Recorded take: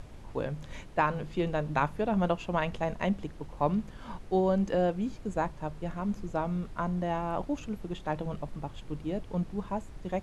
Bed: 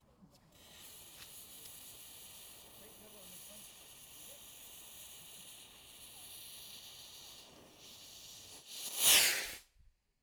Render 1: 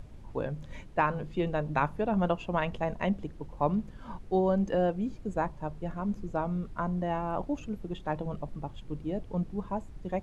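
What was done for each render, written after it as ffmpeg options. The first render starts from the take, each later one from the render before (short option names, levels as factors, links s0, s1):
-af "afftdn=nr=7:nf=-46"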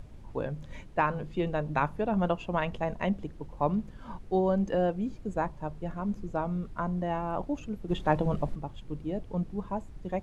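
-filter_complex "[0:a]asplit=3[s0][s1][s2];[s0]afade=t=out:st=7.88:d=0.02[s3];[s1]acontrast=85,afade=t=in:st=7.88:d=0.02,afade=t=out:st=8.54:d=0.02[s4];[s2]afade=t=in:st=8.54:d=0.02[s5];[s3][s4][s5]amix=inputs=3:normalize=0"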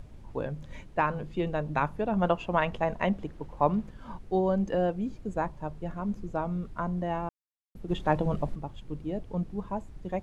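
-filter_complex "[0:a]asettb=1/sr,asplit=3[s0][s1][s2];[s0]atrim=end=2.224[s3];[s1]atrim=start=2.22:end=3.91,asetpts=PTS-STARTPTS,afade=t=in:d=0.004:c=qsin,afade=t=out:st=1.686:d=0.004:c=qsin,equalizer=f=1200:w=0.41:g=4.5[s4];[s2]atrim=start=3.906[s5];[s3][s4]acrossfade=d=0.004:c1=hsin:c2=qsin[s6];[s6][s5]acrossfade=d=0.004:c1=qsin:c2=hsin,asplit=3[s7][s8][s9];[s7]atrim=end=7.29,asetpts=PTS-STARTPTS,afade=t=out:st=7.286:d=0.004:c=hsin[s10];[s8]atrim=start=7.29:end=7.75,asetpts=PTS-STARTPTS,volume=0[s11];[s9]atrim=start=7.75,asetpts=PTS-STARTPTS,afade=t=in:d=0.004:c=hsin[s12];[s10][s11][s12]concat=n=3:v=0:a=1"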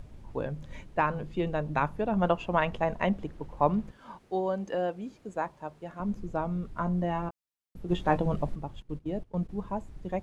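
-filter_complex "[0:a]asettb=1/sr,asplit=3[s0][s1][s2];[s0]atrim=end=3.924[s3];[s1]atrim=start=3.92:end=6,asetpts=PTS-STARTPTS,afade=t=in:d=0.004:c=qsin,afade=t=out:st=2.076:d=0.004:c=qsin,highpass=f=450:p=1[s4];[s2]atrim=start=5.996[s5];[s3][s4]acrossfade=d=0.004:c1=hsin:c2=qsin[s6];[s6][s5]acrossfade=d=0.004:c1=qsin:c2=hsin,asettb=1/sr,asplit=3[s7][s8][s9];[s7]atrim=end=6.734[s10];[s8]atrim=start=6.73:end=8.18,asetpts=PTS-STARTPTS,afade=t=in:d=0.004:c=qsin,afade=t=out:st=1.446:d=0.004:c=qsin,asplit=2[s11][s12];[s12]adelay=17,volume=0.422[s13];[s11][s13]amix=inputs=2:normalize=0,atrim=end_sample=63945[s14];[s9]atrim=start=8.176[s15];[s10][s14]acrossfade=d=0.004:c1=hsin:c2=qsin[s16];[s16][s15]acrossfade=d=0.004:c1=qsin:c2=hsin,asettb=1/sr,asplit=3[s17][s18][s19];[s17]atrim=end=8.824[s20];[s18]atrim=start=8.82:end=9.49,asetpts=PTS-STARTPTS,afade=t=in:d=0.004:c=qsin,afade=t=out:st=0.666:d=0.004:c=qsin,agate=range=0.158:threshold=0.0112:ratio=16:release=100:detection=peak[s21];[s19]atrim=start=9.486[s22];[s20][s21]acrossfade=d=0.004:c1=hsin:c2=qsin[s23];[s23][s22]acrossfade=d=0.004:c1=qsin:c2=hsin"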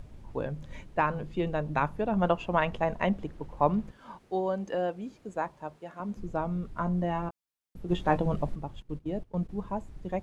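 -filter_complex "[0:a]asettb=1/sr,asplit=3[s0][s1][s2];[s0]atrim=end=5.764[s3];[s1]atrim=start=5.76:end=6.17,asetpts=PTS-STARTPTS,afade=t=in:d=0.004:c=qsin,afade=t=out:st=0.406:d=0.004:c=qsin,highpass=f=270:p=1[s4];[s2]atrim=start=6.166[s5];[s3][s4]acrossfade=d=0.004:c1=hsin:c2=qsin[s6];[s6][s5]acrossfade=d=0.004:c1=qsin:c2=hsin"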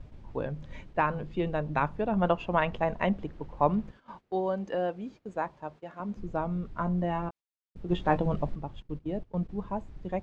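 -af "agate=range=0.2:threshold=0.00398:ratio=16:detection=peak,lowpass=5100"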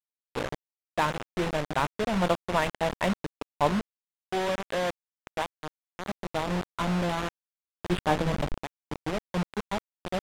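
-af "aresample=8000,acrusher=bits=4:mix=0:aa=0.000001,aresample=44100,adynamicsmooth=sensitivity=7.5:basefreq=610"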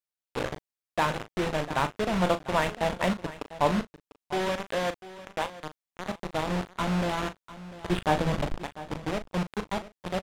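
-filter_complex "[0:a]asplit=2[s0][s1];[s1]adelay=38,volume=0.282[s2];[s0][s2]amix=inputs=2:normalize=0,aecho=1:1:697:0.158"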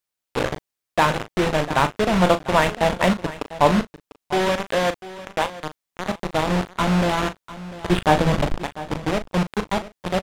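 -af "volume=2.51"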